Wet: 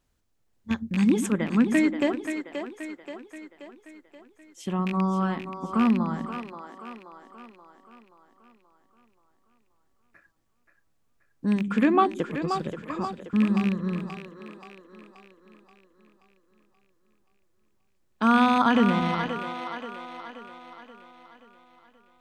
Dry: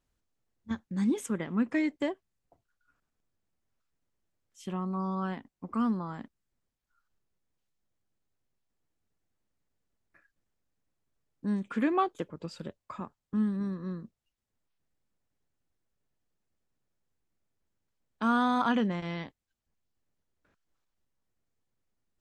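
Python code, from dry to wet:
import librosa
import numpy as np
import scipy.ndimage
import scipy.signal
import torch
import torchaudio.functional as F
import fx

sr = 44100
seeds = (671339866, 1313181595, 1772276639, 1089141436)

y = fx.rattle_buzz(x, sr, strikes_db=-33.0, level_db=-28.0)
y = fx.echo_split(y, sr, split_hz=300.0, low_ms=114, high_ms=529, feedback_pct=52, wet_db=-7.5)
y = y * librosa.db_to_amplitude(6.5)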